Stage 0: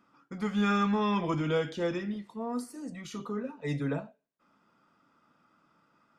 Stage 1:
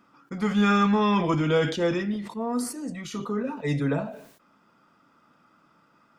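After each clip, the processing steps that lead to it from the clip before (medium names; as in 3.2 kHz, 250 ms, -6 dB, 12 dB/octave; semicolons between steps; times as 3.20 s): decay stretcher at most 86 dB/s; trim +6 dB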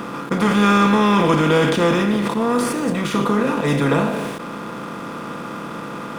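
spectral levelling over time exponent 0.4; hysteresis with a dead band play -38.5 dBFS; trim +3.5 dB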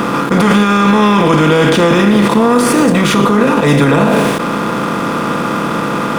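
loudness maximiser +15 dB; trim -1 dB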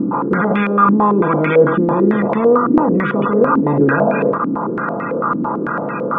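pre-echo 282 ms -17 dB; loudest bins only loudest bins 64; step-sequenced low-pass 9 Hz 290–2200 Hz; trim -7.5 dB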